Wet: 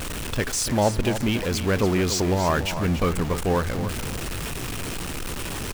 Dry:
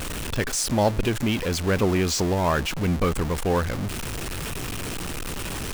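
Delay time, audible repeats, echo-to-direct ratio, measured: 287 ms, 2, -10.0 dB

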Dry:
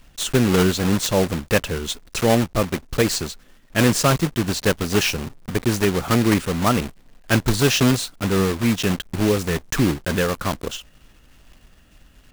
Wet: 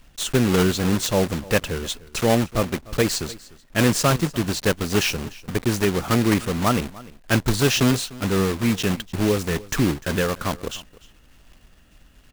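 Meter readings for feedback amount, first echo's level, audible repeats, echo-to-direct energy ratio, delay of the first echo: no regular repeats, -20.5 dB, 1, -20.5 dB, 298 ms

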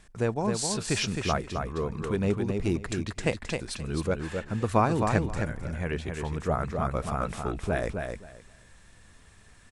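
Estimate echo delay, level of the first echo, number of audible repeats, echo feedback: 263 ms, -5.0 dB, 3, 18%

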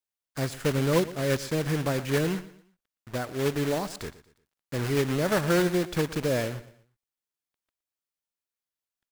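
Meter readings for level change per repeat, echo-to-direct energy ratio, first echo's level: -9.0 dB, -16.5 dB, -17.0 dB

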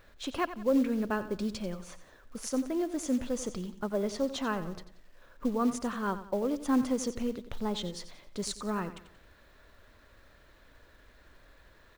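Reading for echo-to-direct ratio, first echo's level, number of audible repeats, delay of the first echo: -12.5 dB, -13.0 dB, 3, 90 ms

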